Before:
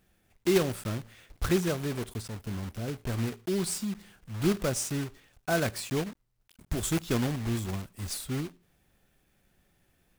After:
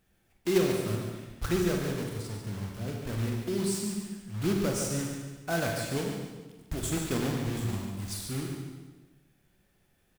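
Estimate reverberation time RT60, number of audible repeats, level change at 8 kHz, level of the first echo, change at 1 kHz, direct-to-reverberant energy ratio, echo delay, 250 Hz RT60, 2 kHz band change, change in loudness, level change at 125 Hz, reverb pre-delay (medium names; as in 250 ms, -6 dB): 1.2 s, 2, -0.5 dB, -8.0 dB, -0.5 dB, 0.5 dB, 143 ms, 1.3 s, -1.0 dB, -0.5 dB, 0.0 dB, 28 ms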